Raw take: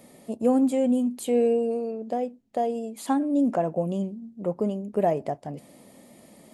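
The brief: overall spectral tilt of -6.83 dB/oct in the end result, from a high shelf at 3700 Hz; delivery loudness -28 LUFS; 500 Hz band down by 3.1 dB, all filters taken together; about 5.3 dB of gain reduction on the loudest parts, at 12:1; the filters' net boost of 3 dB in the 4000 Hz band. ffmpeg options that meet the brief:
-af "equalizer=f=500:t=o:g=-3.5,highshelf=f=3.7k:g=-4,equalizer=f=4k:t=o:g=6.5,acompressor=threshold=-24dB:ratio=12,volume=3dB"

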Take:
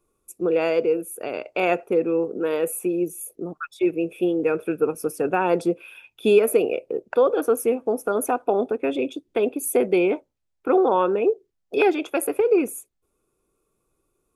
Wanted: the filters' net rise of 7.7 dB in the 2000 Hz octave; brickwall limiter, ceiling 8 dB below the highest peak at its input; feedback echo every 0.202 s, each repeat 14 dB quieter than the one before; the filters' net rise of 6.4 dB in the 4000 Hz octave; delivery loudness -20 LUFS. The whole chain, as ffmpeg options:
-af "equalizer=f=2k:t=o:g=9,equalizer=f=4k:t=o:g=4.5,alimiter=limit=-11dB:level=0:latency=1,aecho=1:1:202|404:0.2|0.0399,volume=3dB"

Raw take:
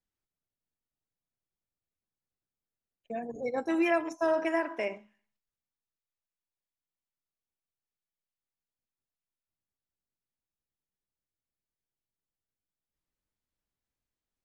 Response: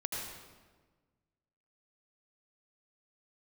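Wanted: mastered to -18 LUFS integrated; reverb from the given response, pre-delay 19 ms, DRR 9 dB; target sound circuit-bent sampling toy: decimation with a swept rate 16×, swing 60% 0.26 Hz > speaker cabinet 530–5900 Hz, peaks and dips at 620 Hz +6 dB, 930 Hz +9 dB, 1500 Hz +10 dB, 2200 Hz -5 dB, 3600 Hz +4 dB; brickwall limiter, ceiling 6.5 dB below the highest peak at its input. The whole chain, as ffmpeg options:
-filter_complex "[0:a]alimiter=limit=-23dB:level=0:latency=1,asplit=2[a][b];[1:a]atrim=start_sample=2205,adelay=19[c];[b][c]afir=irnorm=-1:irlink=0,volume=-12dB[d];[a][d]amix=inputs=2:normalize=0,acrusher=samples=16:mix=1:aa=0.000001:lfo=1:lforange=9.6:lforate=0.26,highpass=530,equalizer=f=620:t=q:w=4:g=6,equalizer=f=930:t=q:w=4:g=9,equalizer=f=1.5k:t=q:w=4:g=10,equalizer=f=2.2k:t=q:w=4:g=-5,equalizer=f=3.6k:t=q:w=4:g=4,lowpass=f=5.9k:w=0.5412,lowpass=f=5.9k:w=1.3066,volume=12dB"

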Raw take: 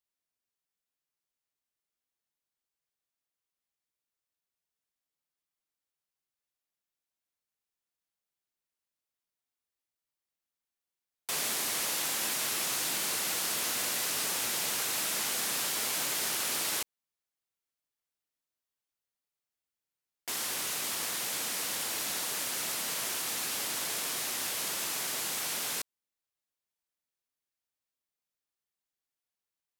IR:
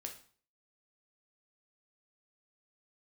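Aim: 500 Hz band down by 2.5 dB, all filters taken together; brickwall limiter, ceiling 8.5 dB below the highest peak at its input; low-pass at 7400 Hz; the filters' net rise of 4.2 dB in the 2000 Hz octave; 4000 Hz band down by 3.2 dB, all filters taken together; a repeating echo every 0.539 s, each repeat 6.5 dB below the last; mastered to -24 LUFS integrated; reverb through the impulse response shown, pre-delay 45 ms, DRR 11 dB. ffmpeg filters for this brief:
-filter_complex "[0:a]lowpass=7.4k,equalizer=f=500:t=o:g=-3.5,equalizer=f=2k:t=o:g=7,equalizer=f=4k:t=o:g=-6,alimiter=level_in=6dB:limit=-24dB:level=0:latency=1,volume=-6dB,aecho=1:1:539|1078|1617|2156|2695|3234:0.473|0.222|0.105|0.0491|0.0231|0.0109,asplit=2[a][b];[1:a]atrim=start_sample=2205,adelay=45[c];[b][c]afir=irnorm=-1:irlink=0,volume=-8dB[d];[a][d]amix=inputs=2:normalize=0,volume=12.5dB"

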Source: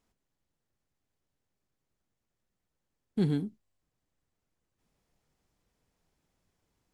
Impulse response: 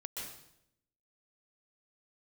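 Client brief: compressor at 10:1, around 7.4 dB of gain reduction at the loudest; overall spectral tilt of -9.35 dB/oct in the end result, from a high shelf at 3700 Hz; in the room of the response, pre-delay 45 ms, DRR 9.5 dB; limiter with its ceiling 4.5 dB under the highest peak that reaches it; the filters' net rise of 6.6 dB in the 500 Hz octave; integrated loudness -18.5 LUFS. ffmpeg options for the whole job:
-filter_complex "[0:a]equalizer=f=500:t=o:g=9,highshelf=f=3.7k:g=-6,acompressor=threshold=-27dB:ratio=10,alimiter=level_in=1dB:limit=-24dB:level=0:latency=1,volume=-1dB,asplit=2[a][b];[1:a]atrim=start_sample=2205,adelay=45[c];[b][c]afir=irnorm=-1:irlink=0,volume=-9dB[d];[a][d]amix=inputs=2:normalize=0,volume=20dB"

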